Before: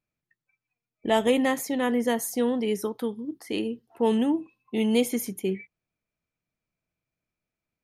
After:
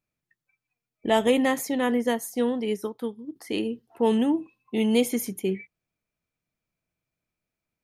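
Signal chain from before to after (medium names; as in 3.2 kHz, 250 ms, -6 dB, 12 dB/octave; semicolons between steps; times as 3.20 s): 1.97–3.36 s: upward expansion 1.5:1, over -38 dBFS; trim +1 dB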